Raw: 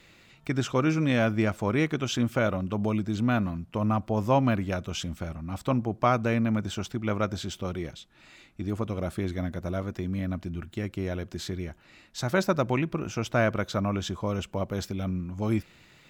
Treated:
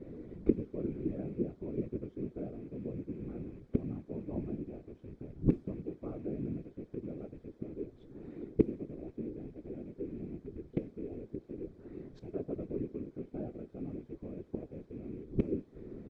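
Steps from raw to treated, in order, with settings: rattling part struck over -31 dBFS, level -15 dBFS; doubler 14 ms -3 dB; flipped gate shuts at -25 dBFS, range -26 dB; added noise blue -48 dBFS; on a send at -16 dB: reverb RT60 0.40 s, pre-delay 10 ms; on the sum: low-pass opened by the level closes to 2000 Hz, open at -23.5 dBFS; EQ curve 190 Hz 0 dB, 340 Hz +14 dB, 880 Hz -12 dB, 2900 Hz -21 dB; whisperiser; low shelf 320 Hz +7 dB; notch 2800 Hz, Q 8.5; gain +2 dB

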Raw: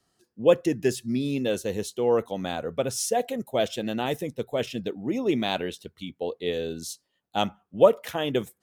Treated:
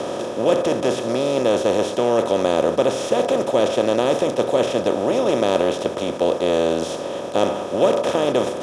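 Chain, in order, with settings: per-bin compression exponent 0.2; air absorption 62 m; gain -4 dB

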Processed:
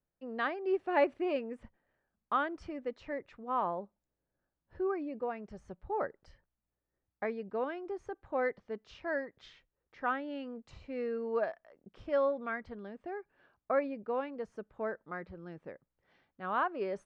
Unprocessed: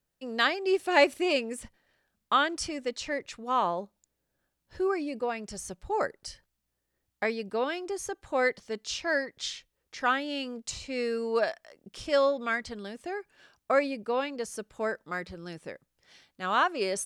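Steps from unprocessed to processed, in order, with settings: LPF 1500 Hz 12 dB/oct; gain -5 dB

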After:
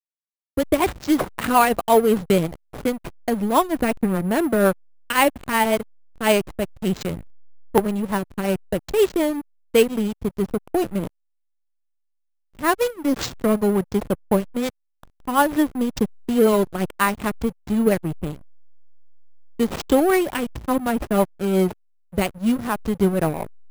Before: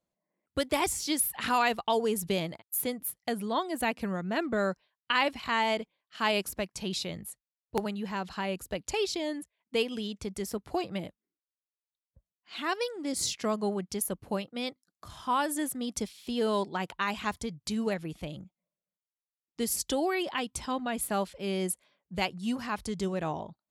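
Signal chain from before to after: high shelf 3100 Hz -8 dB; AGC gain up to 13 dB; rotary speaker horn 5.5 Hz; careless resampling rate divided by 4×, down none, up hold; backlash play -22 dBFS; gain +2 dB

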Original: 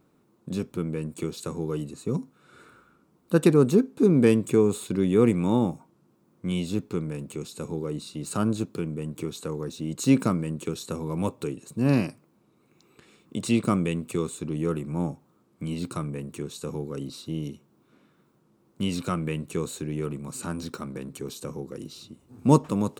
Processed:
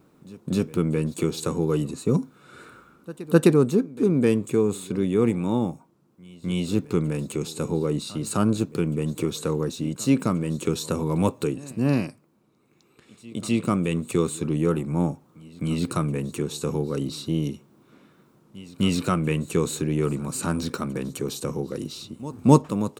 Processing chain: vocal rider within 4 dB 0.5 s; wow and flutter 23 cents; pre-echo 0.258 s -20 dB; gain +2.5 dB

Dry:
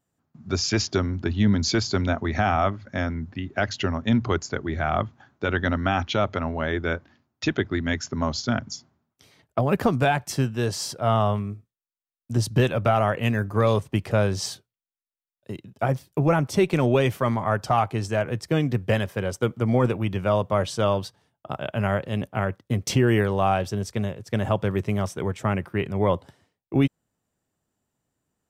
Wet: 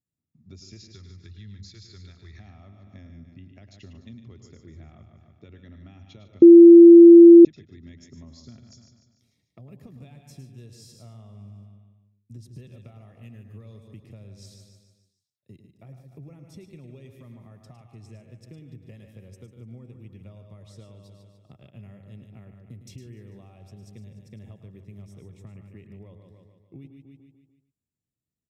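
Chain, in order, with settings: 0.77–2.4 fifteen-band EQ 250 Hz -12 dB, 630 Hz -10 dB, 1600 Hz +8 dB, 4000 Hz +8 dB; feedback echo 0.147 s, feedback 49%, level -10.5 dB; compressor, threshold -28 dBFS, peak gain reduction 12.5 dB; passive tone stack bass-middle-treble 10-0-1; notch comb 1500 Hz; echo 0.107 s -9.5 dB; 6.42–7.45 bleep 340 Hz -9.5 dBFS; gain +5.5 dB

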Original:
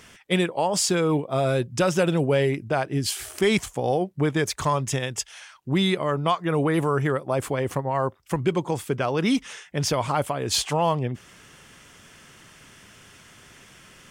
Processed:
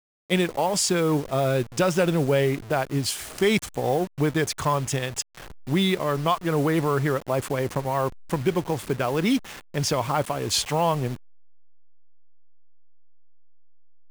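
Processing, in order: level-crossing sampler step -34 dBFS

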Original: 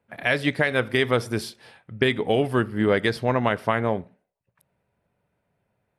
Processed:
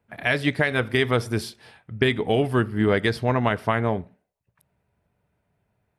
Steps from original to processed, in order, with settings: bell 60 Hz +7 dB 1.8 oct; notch 530 Hz, Q 12

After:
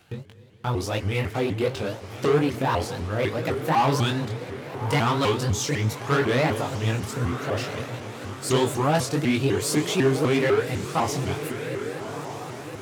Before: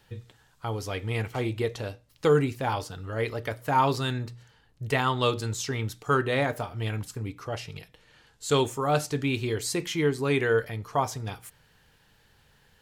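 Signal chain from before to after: diffused feedback echo 1.269 s, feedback 46%, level -12.5 dB; gate with hold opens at -40 dBFS; sample leveller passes 3; HPF 100 Hz; low shelf 400 Hz +3 dB; plate-style reverb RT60 1.3 s, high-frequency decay 0.95×, pre-delay 85 ms, DRR 15.5 dB; upward compressor, threshold -25 dBFS; chorus 2.9 Hz, delay 18.5 ms, depth 5.6 ms; shaped vibrato saw up 4 Hz, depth 250 cents; gain -3 dB

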